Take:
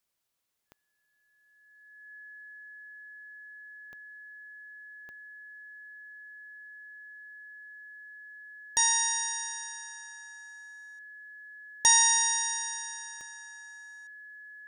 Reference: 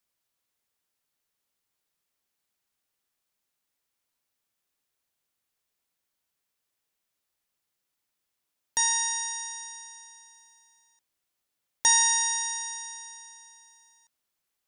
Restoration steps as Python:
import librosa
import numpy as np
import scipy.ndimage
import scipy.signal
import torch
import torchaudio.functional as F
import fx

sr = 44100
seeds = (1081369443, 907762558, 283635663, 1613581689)

y = fx.fix_declick_ar(x, sr, threshold=10.0)
y = fx.notch(y, sr, hz=1700.0, q=30.0)